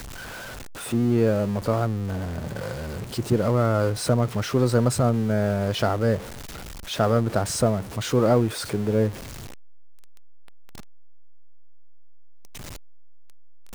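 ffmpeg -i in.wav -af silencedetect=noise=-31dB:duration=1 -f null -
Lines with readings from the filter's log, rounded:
silence_start: 9.11
silence_end: 13.75 | silence_duration: 4.64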